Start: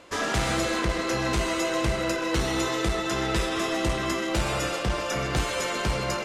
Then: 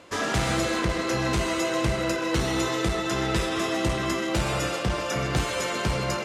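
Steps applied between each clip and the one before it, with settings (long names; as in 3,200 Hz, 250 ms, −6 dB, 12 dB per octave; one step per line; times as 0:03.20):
high-pass filter 86 Hz 12 dB per octave
low-shelf EQ 130 Hz +8 dB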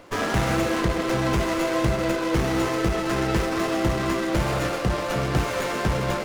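windowed peak hold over 9 samples
level +3 dB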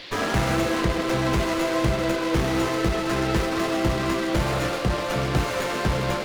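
noise in a band 1,700–4,600 Hz −42 dBFS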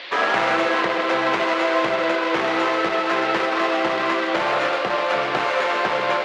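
band-pass filter 570–3,000 Hz
convolution reverb RT60 0.95 s, pre-delay 5 ms, DRR 16 dB
level +8 dB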